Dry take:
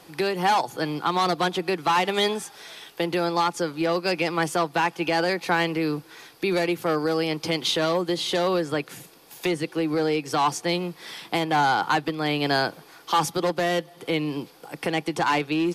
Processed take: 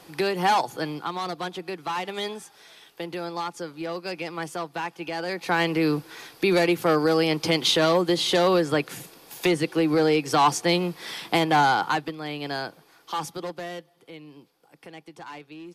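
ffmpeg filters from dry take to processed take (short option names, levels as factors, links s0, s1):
-af "volume=3.55,afade=t=out:st=0.63:d=0.52:silence=0.398107,afade=t=in:st=5.22:d=0.64:silence=0.281838,afade=t=out:st=11.45:d=0.76:silence=0.281838,afade=t=out:st=13.32:d=0.77:silence=0.316228"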